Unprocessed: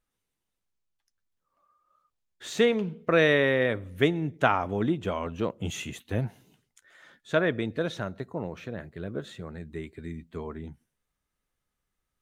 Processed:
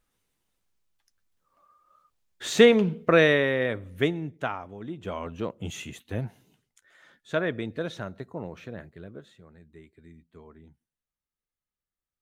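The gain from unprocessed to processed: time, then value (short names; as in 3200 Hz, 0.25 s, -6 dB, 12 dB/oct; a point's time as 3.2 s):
2.93 s +6.5 dB
3.48 s -1.5 dB
4.1 s -1.5 dB
4.8 s -13.5 dB
5.14 s -2.5 dB
8.8 s -2.5 dB
9.36 s -13 dB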